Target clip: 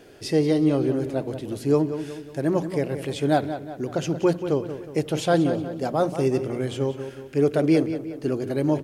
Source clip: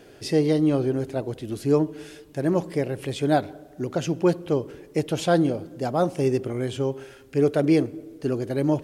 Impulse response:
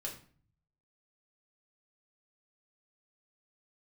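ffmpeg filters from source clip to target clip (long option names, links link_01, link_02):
-filter_complex "[0:a]bandreject=frequency=60:width_type=h:width=6,bandreject=frequency=120:width_type=h:width=6,bandreject=frequency=180:width_type=h:width=6,asplit=2[link_01][link_02];[link_02]adelay=182,lowpass=frequency=4500:poles=1,volume=-10.5dB,asplit=2[link_03][link_04];[link_04]adelay=182,lowpass=frequency=4500:poles=1,volume=0.49,asplit=2[link_05][link_06];[link_06]adelay=182,lowpass=frequency=4500:poles=1,volume=0.49,asplit=2[link_07][link_08];[link_08]adelay=182,lowpass=frequency=4500:poles=1,volume=0.49,asplit=2[link_09][link_10];[link_10]adelay=182,lowpass=frequency=4500:poles=1,volume=0.49[link_11];[link_01][link_03][link_05][link_07][link_09][link_11]amix=inputs=6:normalize=0"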